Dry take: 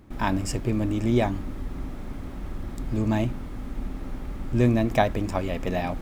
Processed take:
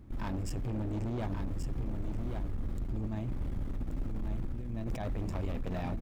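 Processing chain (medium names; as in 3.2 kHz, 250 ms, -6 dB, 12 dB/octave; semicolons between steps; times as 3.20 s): bass shelf 240 Hz +11.5 dB; 2.82–5.12 s: compressor with a negative ratio -20 dBFS, ratio -0.5; peak limiter -15 dBFS, peak gain reduction 11 dB; overload inside the chain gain 22.5 dB; delay 1131 ms -6 dB; trim -9 dB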